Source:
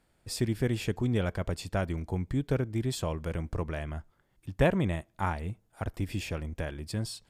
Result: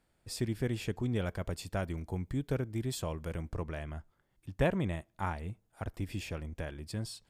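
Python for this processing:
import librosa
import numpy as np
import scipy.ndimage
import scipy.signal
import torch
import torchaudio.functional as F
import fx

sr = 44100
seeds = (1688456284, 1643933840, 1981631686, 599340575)

y = fx.high_shelf(x, sr, hz=9700.0, db=7.0, at=(1.19, 3.48))
y = y * 10.0 ** (-4.5 / 20.0)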